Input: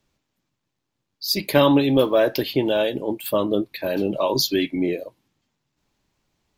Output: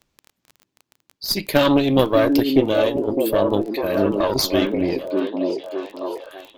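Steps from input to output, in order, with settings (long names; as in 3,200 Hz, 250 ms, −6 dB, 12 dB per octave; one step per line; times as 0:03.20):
harmonic generator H 4 −13 dB, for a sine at −2 dBFS
echo through a band-pass that steps 603 ms, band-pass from 300 Hz, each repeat 0.7 octaves, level −1 dB
surface crackle 17 per second −30 dBFS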